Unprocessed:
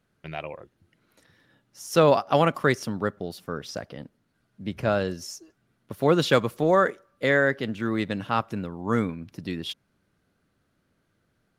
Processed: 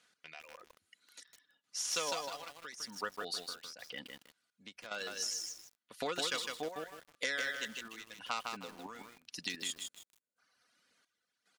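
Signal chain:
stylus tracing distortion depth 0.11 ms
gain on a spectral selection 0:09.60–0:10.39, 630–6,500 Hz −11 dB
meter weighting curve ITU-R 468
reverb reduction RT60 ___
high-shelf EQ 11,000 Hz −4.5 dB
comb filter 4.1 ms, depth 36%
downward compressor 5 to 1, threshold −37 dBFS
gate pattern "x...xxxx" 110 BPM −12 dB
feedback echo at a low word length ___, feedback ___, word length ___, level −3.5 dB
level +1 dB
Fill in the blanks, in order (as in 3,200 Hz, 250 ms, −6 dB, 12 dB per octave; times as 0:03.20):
1.3 s, 156 ms, 35%, 9 bits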